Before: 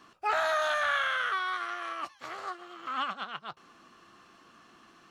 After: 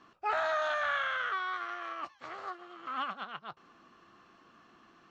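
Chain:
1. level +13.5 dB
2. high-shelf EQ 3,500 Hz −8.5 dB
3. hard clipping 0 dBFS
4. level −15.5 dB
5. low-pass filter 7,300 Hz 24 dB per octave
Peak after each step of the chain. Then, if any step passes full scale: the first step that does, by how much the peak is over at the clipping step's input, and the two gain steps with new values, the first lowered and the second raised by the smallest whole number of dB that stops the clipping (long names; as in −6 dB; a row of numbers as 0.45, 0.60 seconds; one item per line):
−2.0, −3.0, −3.0, −18.5, −18.5 dBFS
no step passes full scale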